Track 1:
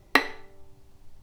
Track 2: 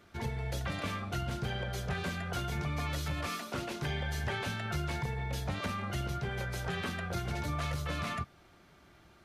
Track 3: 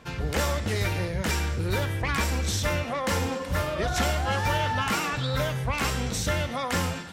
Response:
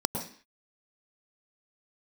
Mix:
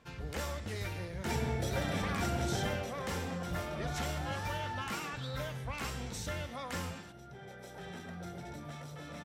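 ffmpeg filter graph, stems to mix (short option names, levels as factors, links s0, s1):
-filter_complex "[1:a]lowshelf=f=140:g=-8.5,asoftclip=type=tanh:threshold=0.0178,adelay=1100,volume=2,afade=t=out:st=2.58:d=0.28:silence=0.398107,afade=t=out:st=4.27:d=0.24:silence=0.281838,afade=t=in:st=7.08:d=0.74:silence=0.398107,asplit=2[s0][s1];[s1]volume=0.596[s2];[2:a]volume=0.251[s3];[3:a]atrim=start_sample=2205[s4];[s2][s4]afir=irnorm=-1:irlink=0[s5];[s0][s3][s5]amix=inputs=3:normalize=0"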